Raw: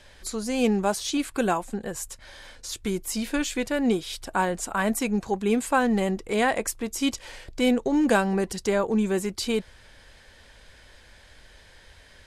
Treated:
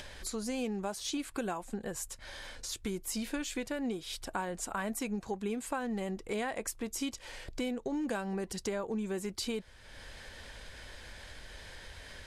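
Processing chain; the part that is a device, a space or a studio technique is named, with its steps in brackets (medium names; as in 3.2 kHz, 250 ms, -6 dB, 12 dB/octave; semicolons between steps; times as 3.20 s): upward and downward compression (upward compressor, threshold -33 dBFS; compression, threshold -27 dBFS, peak gain reduction 10.5 dB); trim -5 dB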